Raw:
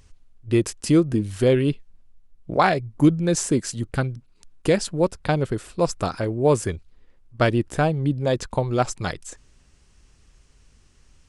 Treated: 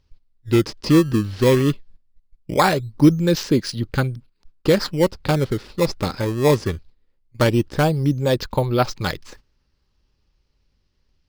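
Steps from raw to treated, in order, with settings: gate -44 dBFS, range -14 dB; resonant high shelf 6300 Hz -11 dB, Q 3; in parallel at -4 dB: decimation with a swept rate 17×, swing 160% 0.2 Hz; on the sum: Butterworth band-stop 690 Hz, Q 6.9; gain -1 dB

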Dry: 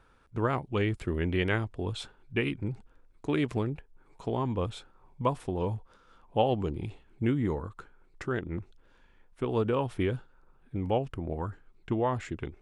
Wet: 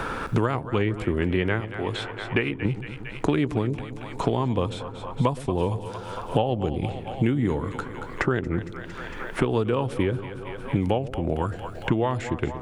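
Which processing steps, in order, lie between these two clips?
1.6–2.65 low shelf 320 Hz -12 dB; on a send: split-band echo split 570 Hz, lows 0.116 s, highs 0.228 s, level -14.5 dB; on the sum: three-band squash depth 100%; gain +5 dB

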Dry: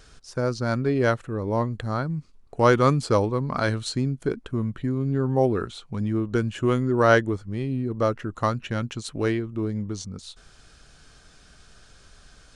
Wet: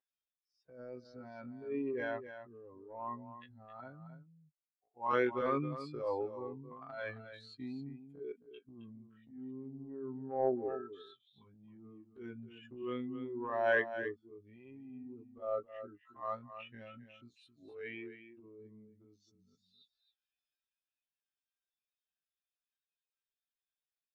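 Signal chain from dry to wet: per-bin expansion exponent 2; HPF 520 Hz 12 dB/oct; notch 1400 Hz, Q 7.5; comb 7.5 ms, depth 94%; transient shaper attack -10 dB, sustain +5 dB; tempo 0.52×; air absorption 410 m; echo 0.267 s -11 dB; gain -6 dB

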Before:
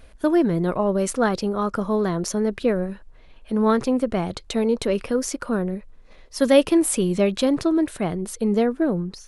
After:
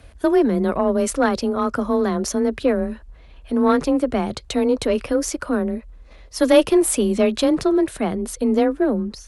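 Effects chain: frequency shift +24 Hz; added harmonics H 2 -19 dB, 5 -32 dB, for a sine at -4.5 dBFS; gain +1.5 dB

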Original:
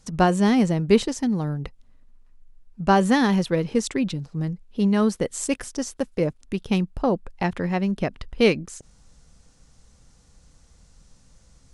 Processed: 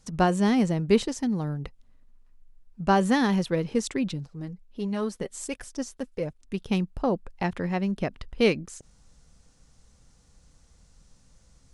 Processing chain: 4.27–6.54 flange 1.5 Hz, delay 1.1 ms, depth 4.2 ms, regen +40%; gain -3.5 dB

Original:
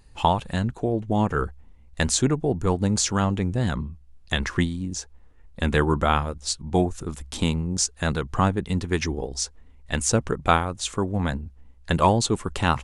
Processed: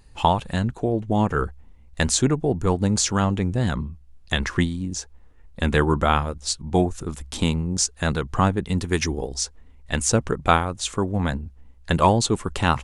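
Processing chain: 8.78–9.34 high shelf 8400 Hz +12 dB; gain +1.5 dB

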